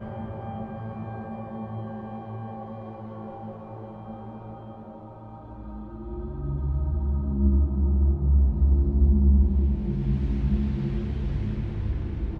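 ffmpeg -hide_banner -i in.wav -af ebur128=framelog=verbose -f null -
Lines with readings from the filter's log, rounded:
Integrated loudness:
  I:         -26.5 LUFS
  Threshold: -37.8 LUFS
Loudness range:
  LRA:        16.7 LU
  Threshold: -47.3 LUFS
  LRA low:   -39.8 LUFS
  LRA high:  -23.1 LUFS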